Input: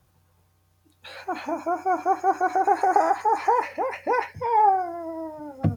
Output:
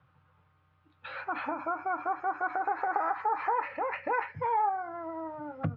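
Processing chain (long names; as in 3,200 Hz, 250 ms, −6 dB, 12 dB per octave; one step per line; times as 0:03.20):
downward compressor 2.5 to 1, threshold −28 dBFS, peak gain reduction 9.5 dB
loudspeaker in its box 110–3,000 Hz, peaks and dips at 130 Hz +4 dB, 220 Hz −7 dB, 370 Hz −10 dB, 680 Hz −6 dB, 1,300 Hz +9 dB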